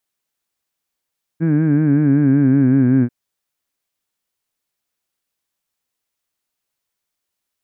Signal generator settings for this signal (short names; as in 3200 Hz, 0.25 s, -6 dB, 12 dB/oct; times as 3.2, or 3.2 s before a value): formant vowel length 1.69 s, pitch 158 Hz, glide -4 st, F1 270 Hz, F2 1600 Hz, F3 2300 Hz